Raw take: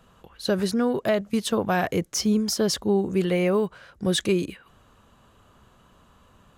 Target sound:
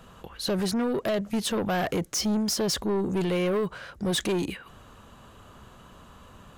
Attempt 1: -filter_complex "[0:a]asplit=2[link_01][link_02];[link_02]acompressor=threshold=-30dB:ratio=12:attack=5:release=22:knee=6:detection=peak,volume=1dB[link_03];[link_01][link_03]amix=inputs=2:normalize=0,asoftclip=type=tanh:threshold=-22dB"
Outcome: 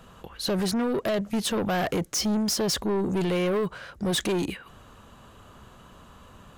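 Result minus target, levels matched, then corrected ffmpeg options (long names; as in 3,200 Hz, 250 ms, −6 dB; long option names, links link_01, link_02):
downward compressor: peak gain reduction −8 dB
-filter_complex "[0:a]asplit=2[link_01][link_02];[link_02]acompressor=threshold=-38.5dB:ratio=12:attack=5:release=22:knee=6:detection=peak,volume=1dB[link_03];[link_01][link_03]amix=inputs=2:normalize=0,asoftclip=type=tanh:threshold=-22dB"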